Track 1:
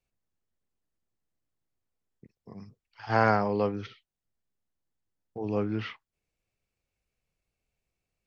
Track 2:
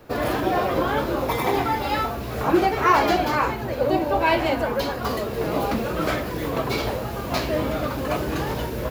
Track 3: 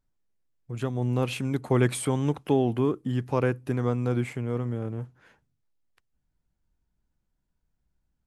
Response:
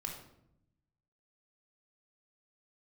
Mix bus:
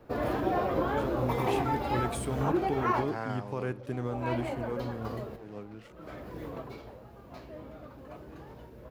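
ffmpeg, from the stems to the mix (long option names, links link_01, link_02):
-filter_complex "[0:a]volume=-13dB,asplit=2[link_01][link_02];[1:a]highshelf=frequency=2000:gain=-10.5,volume=-5.5dB,afade=type=out:start_time=2.57:duration=0.55:silence=0.473151,afade=type=out:start_time=6.43:duration=0.39:silence=0.375837[link_03];[2:a]adelay=200,volume=-7dB,asplit=2[link_04][link_05];[link_05]volume=-16dB[link_06];[link_02]apad=whole_len=392784[link_07];[link_03][link_07]sidechaincompress=threshold=-55dB:ratio=16:attack=6.8:release=455[link_08];[link_01][link_04]amix=inputs=2:normalize=0,aeval=exprs='sgn(val(0))*max(abs(val(0))-0.00211,0)':channel_layout=same,alimiter=limit=-23.5dB:level=0:latency=1:release=15,volume=0dB[link_09];[3:a]atrim=start_sample=2205[link_10];[link_06][link_10]afir=irnorm=-1:irlink=0[link_11];[link_08][link_09][link_11]amix=inputs=3:normalize=0"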